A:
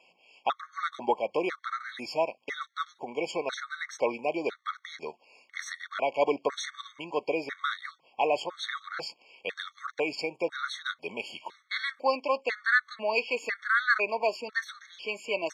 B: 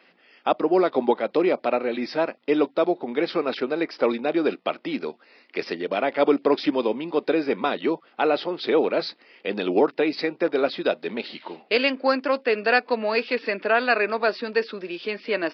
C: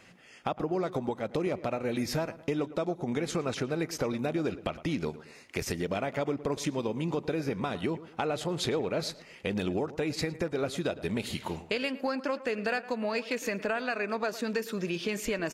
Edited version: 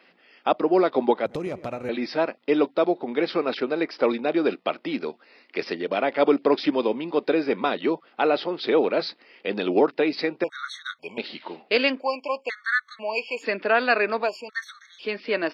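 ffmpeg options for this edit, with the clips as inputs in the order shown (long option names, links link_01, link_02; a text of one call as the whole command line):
ffmpeg -i take0.wav -i take1.wav -i take2.wav -filter_complex "[0:a]asplit=3[link_01][link_02][link_03];[1:a]asplit=5[link_04][link_05][link_06][link_07][link_08];[link_04]atrim=end=1.262[link_09];[2:a]atrim=start=1.258:end=1.892[link_10];[link_05]atrim=start=1.888:end=10.442[link_11];[link_01]atrim=start=10.438:end=11.182[link_12];[link_06]atrim=start=11.178:end=12.03[link_13];[link_02]atrim=start=11.97:end=13.46[link_14];[link_07]atrim=start=13.4:end=14.3[link_15];[link_03]atrim=start=14.2:end=15.08[link_16];[link_08]atrim=start=14.98[link_17];[link_09][link_10]acrossfade=duration=0.004:curve1=hsin:curve2=hsin[link_18];[link_18][link_11]acrossfade=duration=0.004:curve1=hsin:curve2=hsin[link_19];[link_19][link_12]acrossfade=duration=0.004:curve1=hsin:curve2=hsin[link_20];[link_20][link_13]acrossfade=duration=0.004:curve1=hsin:curve2=hsin[link_21];[link_21][link_14]acrossfade=duration=0.06:curve1=tri:curve2=tri[link_22];[link_22][link_15]acrossfade=duration=0.06:curve1=tri:curve2=tri[link_23];[link_23][link_16]acrossfade=duration=0.1:curve1=tri:curve2=tri[link_24];[link_24][link_17]acrossfade=duration=0.1:curve1=tri:curve2=tri" out.wav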